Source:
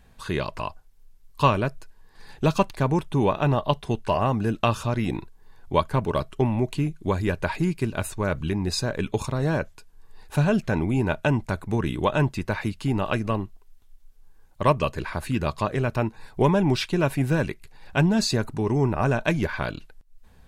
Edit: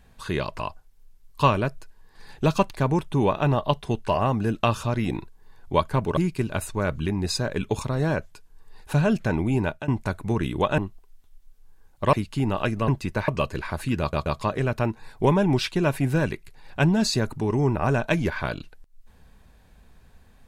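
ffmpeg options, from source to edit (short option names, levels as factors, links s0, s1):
-filter_complex "[0:a]asplit=9[s0][s1][s2][s3][s4][s5][s6][s7][s8];[s0]atrim=end=6.172[s9];[s1]atrim=start=7.598:end=11.31,asetpts=PTS-STARTPTS,afade=t=out:st=3.452:d=0.26:silence=0.133352[s10];[s2]atrim=start=11.31:end=12.212,asetpts=PTS-STARTPTS,afade=t=in:d=0.004:c=hsin:silence=0.133352[s11];[s3]atrim=start=13.358:end=14.712[s12];[s4]atrim=start=12.608:end=13.362[s13];[s5]atrim=start=12.208:end=12.612[s14];[s6]atrim=start=14.708:end=15.562[s15];[s7]atrim=start=15.428:end=15.562[s16];[s8]atrim=start=15.428[s17];[s10][s11]concat=n=2:v=0:a=1[s18];[s9][s18]acrossfade=d=0.004:c1=hsin:c2=hsin[s19];[s19][s12]acrossfade=d=0.004:c1=hsin:c2=hsin[s20];[s20][s13]acrossfade=d=0.004:c1=hsin:c2=hsin[s21];[s21][s14]acrossfade=d=0.004:c1=hsin:c2=hsin[s22];[s22][s15]acrossfade=d=0.004:c1=hsin:c2=hsin[s23];[s23][s16]acrossfade=d=0.004:c1=hsin:c2=hsin[s24];[s24][s17]acrossfade=d=0.004:c1=hsin:c2=hsin"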